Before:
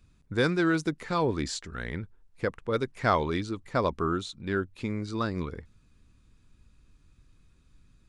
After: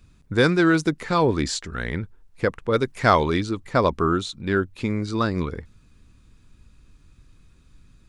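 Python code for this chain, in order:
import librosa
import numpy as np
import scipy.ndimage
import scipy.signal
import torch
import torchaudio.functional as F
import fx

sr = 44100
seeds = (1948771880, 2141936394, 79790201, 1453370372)

y = fx.high_shelf(x, sr, hz=5100.0, db=5.5, at=(2.85, 3.32))
y = F.gain(torch.from_numpy(y), 7.0).numpy()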